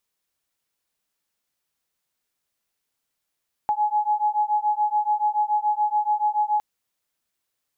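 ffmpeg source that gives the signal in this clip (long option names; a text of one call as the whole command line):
ffmpeg -f lavfi -i "aevalsrc='0.075*(sin(2*PI*839*t)+sin(2*PI*846*t))':duration=2.91:sample_rate=44100" out.wav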